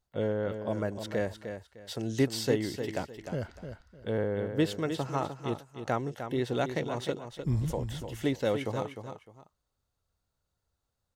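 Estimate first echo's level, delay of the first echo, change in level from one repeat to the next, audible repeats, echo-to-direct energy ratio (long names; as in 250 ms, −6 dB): −8.5 dB, 304 ms, −11.5 dB, 2, −8.0 dB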